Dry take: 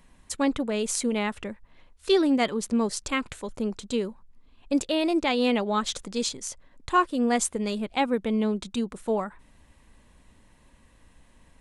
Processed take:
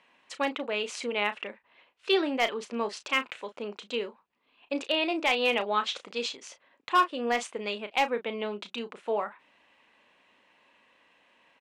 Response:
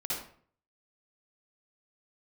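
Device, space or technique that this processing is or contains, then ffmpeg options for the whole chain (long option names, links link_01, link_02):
megaphone: -filter_complex "[0:a]highpass=480,lowpass=3500,equalizer=frequency=2700:width_type=o:width=0.56:gain=7.5,asoftclip=type=hard:threshold=-15dB,asplit=2[link_01][link_02];[link_02]adelay=34,volume=-11dB[link_03];[link_01][link_03]amix=inputs=2:normalize=0"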